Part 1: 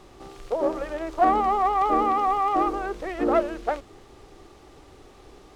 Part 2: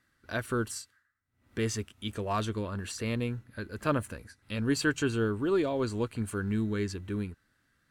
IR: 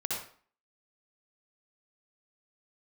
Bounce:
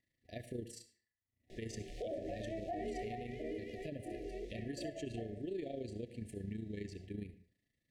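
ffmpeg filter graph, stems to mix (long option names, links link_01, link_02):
-filter_complex "[0:a]flanger=delay=18:depth=6.7:speed=0.9,adelay=1500,afade=type=out:start_time=3.09:duration=0.4:silence=0.398107,asplit=2[link_01][link_02];[link_02]volume=-19dB[link_03];[1:a]tremolo=f=27:d=0.71,volume=-9dB,asplit=3[link_04][link_05][link_06];[link_05]volume=-14dB[link_07];[link_06]apad=whole_len=310994[link_08];[link_01][link_08]sidechaincompress=threshold=-48dB:ratio=8:attack=16:release=338[link_09];[2:a]atrim=start_sample=2205[link_10];[link_03][link_07]amix=inputs=2:normalize=0[link_11];[link_11][link_10]afir=irnorm=-1:irlink=0[link_12];[link_09][link_04][link_12]amix=inputs=3:normalize=0,afftfilt=real='re*(1-between(b*sr/4096,740,1700))':imag='im*(1-between(b*sr/4096,740,1700))':win_size=4096:overlap=0.75,highshelf=frequency=7100:gain=-7,alimiter=level_in=9dB:limit=-24dB:level=0:latency=1:release=135,volume=-9dB"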